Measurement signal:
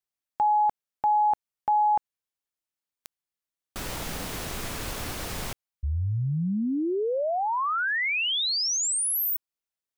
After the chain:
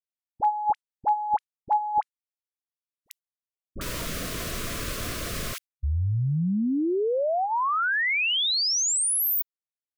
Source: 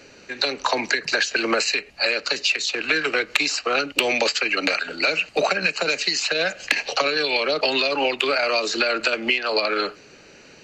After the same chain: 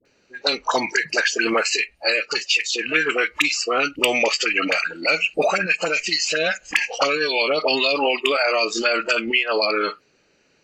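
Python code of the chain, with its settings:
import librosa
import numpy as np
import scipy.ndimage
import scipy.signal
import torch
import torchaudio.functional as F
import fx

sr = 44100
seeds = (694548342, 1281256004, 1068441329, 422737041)

y = fx.noise_reduce_blind(x, sr, reduce_db=16)
y = fx.dispersion(y, sr, late='highs', ms=54.0, hz=820.0)
y = F.gain(torch.from_numpy(y), 2.0).numpy()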